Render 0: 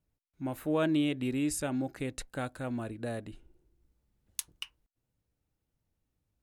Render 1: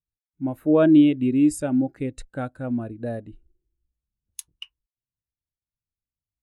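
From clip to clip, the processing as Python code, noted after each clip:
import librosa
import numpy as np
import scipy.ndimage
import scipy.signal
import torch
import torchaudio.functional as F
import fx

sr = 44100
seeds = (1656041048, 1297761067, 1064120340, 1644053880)

y = fx.spectral_expand(x, sr, expansion=1.5)
y = y * librosa.db_to_amplitude(6.0)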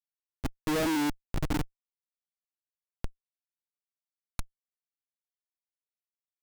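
y = fx.spec_erase(x, sr, start_s=1.1, length_s=1.91, low_hz=220.0, high_hz=3100.0)
y = fx.echo_diffused(y, sr, ms=537, feedback_pct=52, wet_db=-12.5)
y = fx.schmitt(y, sr, flips_db=-20.5)
y = y * librosa.db_to_amplitude(-1.5)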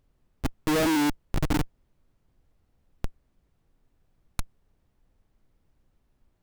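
y = fx.dmg_noise_colour(x, sr, seeds[0], colour='brown', level_db=-70.0)
y = y * librosa.db_to_amplitude(4.5)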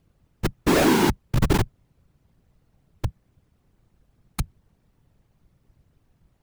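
y = fx.whisperise(x, sr, seeds[1])
y = y * librosa.db_to_amplitude(5.0)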